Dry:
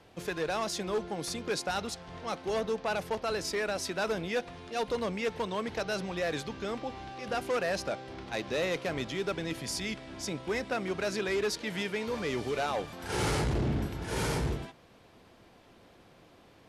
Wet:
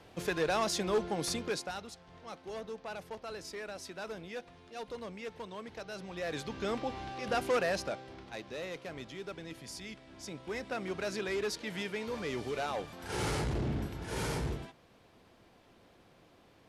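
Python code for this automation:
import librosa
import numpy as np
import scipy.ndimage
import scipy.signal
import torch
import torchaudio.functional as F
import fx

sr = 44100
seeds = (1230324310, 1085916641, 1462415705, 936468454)

y = fx.gain(x, sr, db=fx.line((1.35, 1.5), (1.84, -10.5), (5.92, -10.5), (6.67, 1.0), (7.55, 1.0), (8.49, -10.0), (10.04, -10.0), (10.86, -4.0)))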